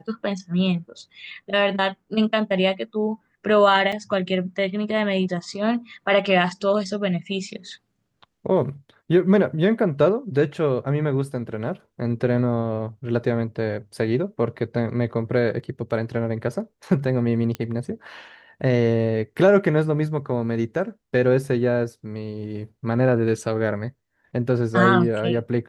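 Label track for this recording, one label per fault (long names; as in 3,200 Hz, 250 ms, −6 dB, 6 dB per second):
3.920000	3.920000	drop-out 5 ms
17.550000	17.550000	click −15 dBFS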